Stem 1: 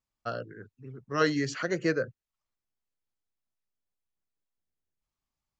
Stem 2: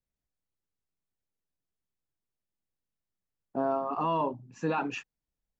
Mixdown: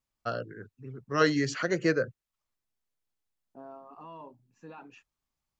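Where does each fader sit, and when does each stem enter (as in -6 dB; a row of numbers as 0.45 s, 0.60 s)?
+1.5 dB, -17.5 dB; 0.00 s, 0.00 s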